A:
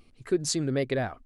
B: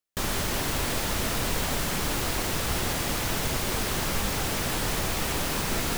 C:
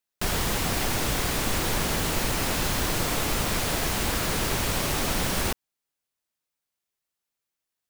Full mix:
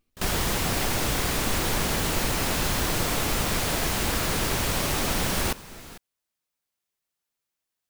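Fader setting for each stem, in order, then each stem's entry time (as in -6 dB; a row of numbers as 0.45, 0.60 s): -17.5, -15.5, +0.5 dB; 0.00, 0.00, 0.00 s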